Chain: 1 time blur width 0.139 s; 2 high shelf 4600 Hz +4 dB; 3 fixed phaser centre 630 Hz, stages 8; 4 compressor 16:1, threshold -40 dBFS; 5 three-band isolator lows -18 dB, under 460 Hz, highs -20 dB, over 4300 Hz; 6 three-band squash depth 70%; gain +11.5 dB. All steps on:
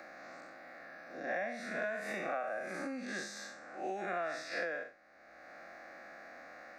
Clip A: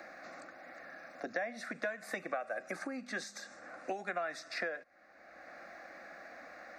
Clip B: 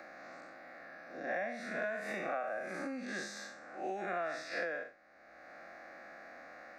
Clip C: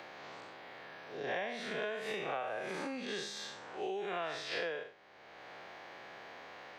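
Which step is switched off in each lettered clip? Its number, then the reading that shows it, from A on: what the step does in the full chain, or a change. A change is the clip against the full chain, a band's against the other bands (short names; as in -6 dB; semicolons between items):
1, 4 kHz band +2.0 dB; 2, 8 kHz band -1.5 dB; 3, crest factor change +2.5 dB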